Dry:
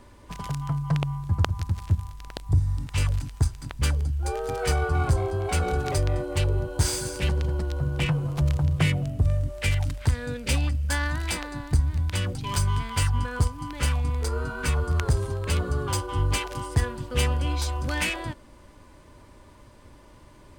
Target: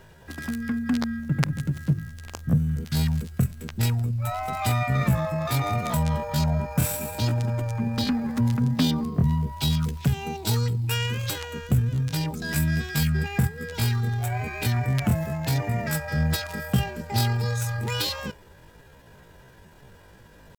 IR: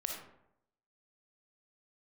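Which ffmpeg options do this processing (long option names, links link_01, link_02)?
-af "asetrate=72056,aresample=44100,atempo=0.612027"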